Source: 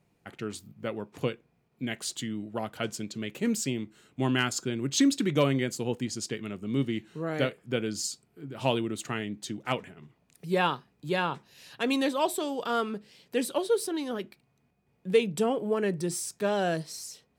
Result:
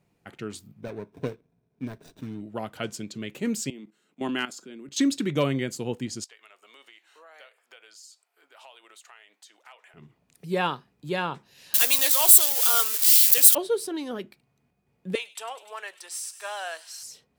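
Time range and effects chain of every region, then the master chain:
0:00.80–0:02.41: running median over 41 samples + EQ curve with evenly spaced ripples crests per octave 1.6, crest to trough 6 dB
0:03.70–0:04.99: Butterworth high-pass 160 Hz 48 dB per octave + output level in coarse steps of 14 dB
0:06.24–0:09.94: high-pass filter 690 Hz 24 dB per octave + downward compressor 4 to 1, threshold −49 dBFS
0:11.74–0:13.55: spike at every zero crossing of −22 dBFS + high-pass filter 530 Hz + spectral tilt +4 dB per octave
0:15.15–0:17.03: high-pass filter 800 Hz 24 dB per octave + delay with a high-pass on its return 100 ms, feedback 83%, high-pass 3,000 Hz, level −15 dB
whole clip: no processing

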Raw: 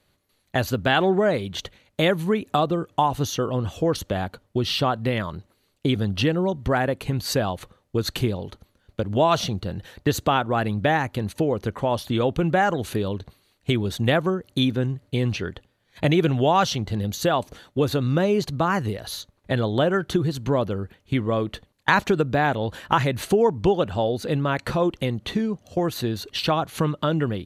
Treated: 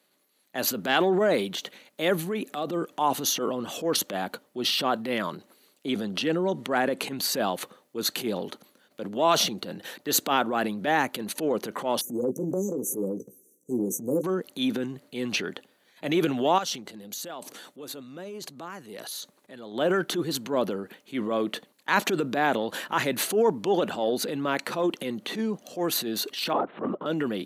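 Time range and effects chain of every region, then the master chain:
0:02.13–0:02.69: notch filter 970 Hz, Q 5.7 + downward compressor 4 to 1, threshold −22 dBFS
0:05.88–0:07.22: low-pass filter 11,000 Hz + upward compression, threshold −23 dBFS
0:12.01–0:14.24: linear-phase brick-wall band-stop 560–5,800 Hz + double-tracking delay 16 ms −8 dB
0:16.58–0:19.72: parametric band 8,300 Hz +4.5 dB 1 octave + downward compressor 12 to 1, threshold −32 dBFS
0:26.53–0:27.06: low-pass filter 1,100 Hz + linear-prediction vocoder at 8 kHz whisper
whole clip: transient designer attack −10 dB, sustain +7 dB; high-pass filter 210 Hz 24 dB per octave; high-shelf EQ 10,000 Hz +9.5 dB; level −1.5 dB

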